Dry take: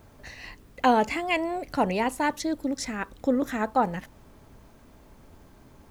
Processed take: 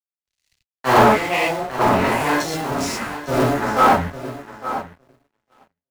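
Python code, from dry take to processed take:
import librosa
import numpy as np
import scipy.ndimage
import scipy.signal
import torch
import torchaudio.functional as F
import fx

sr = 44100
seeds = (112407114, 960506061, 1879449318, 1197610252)

p1 = fx.cycle_switch(x, sr, every=2, mode='muted')
p2 = fx.rev_gated(p1, sr, seeds[0], gate_ms=160, shape='flat', drr_db=-7.5)
p3 = np.sign(p2) * np.maximum(np.abs(p2) - 10.0 ** (-37.0 / 20.0), 0.0)
p4 = fx.low_shelf(p3, sr, hz=470.0, db=3.5)
p5 = fx.doubler(p4, sr, ms=14.0, db=-8.5)
p6 = p5 + fx.echo_feedback(p5, sr, ms=856, feedback_pct=25, wet_db=-9, dry=0)
p7 = fx.leveller(p6, sr, passes=3)
p8 = fx.dynamic_eq(p7, sr, hz=1300.0, q=1.2, threshold_db=-30.0, ratio=4.0, max_db=5)
p9 = fx.band_widen(p8, sr, depth_pct=100)
y = F.gain(torch.from_numpy(p9), -10.0).numpy()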